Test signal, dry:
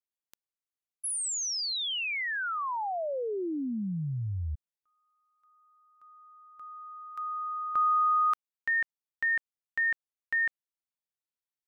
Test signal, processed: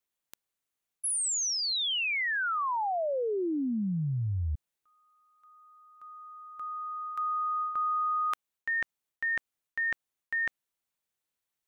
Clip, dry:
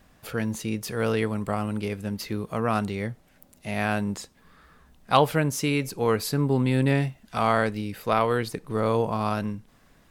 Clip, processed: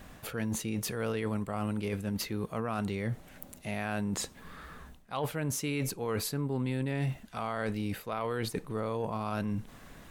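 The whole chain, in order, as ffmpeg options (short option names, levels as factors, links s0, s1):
-af "equalizer=f=5000:t=o:w=0.28:g=-4,areverse,acompressor=threshold=0.0178:ratio=10:attack=1.6:release=291:knee=6:detection=peak,areverse,volume=2.37"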